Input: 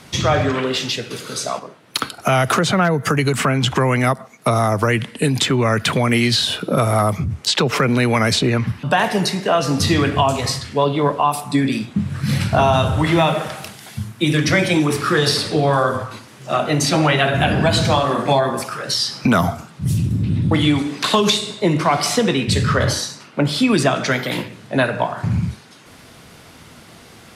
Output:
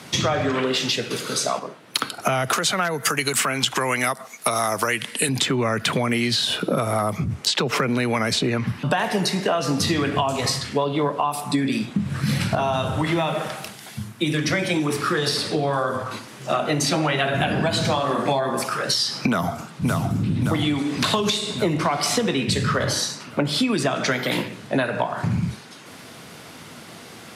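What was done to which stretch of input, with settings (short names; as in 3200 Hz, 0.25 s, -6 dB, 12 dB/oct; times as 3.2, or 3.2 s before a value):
2.53–5.29 tilt +3 dB/oct
12.55–16.06 gain -4 dB
19.27–20.17 echo throw 0.57 s, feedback 60%, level -5.5 dB
whole clip: HPF 130 Hz; compressor, threshold -21 dBFS; gain +2.5 dB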